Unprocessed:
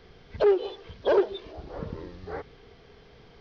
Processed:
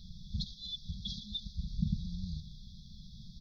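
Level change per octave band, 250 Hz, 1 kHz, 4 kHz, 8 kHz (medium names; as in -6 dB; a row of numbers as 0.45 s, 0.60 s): -6.0 dB, under -40 dB, +4.0 dB, no reading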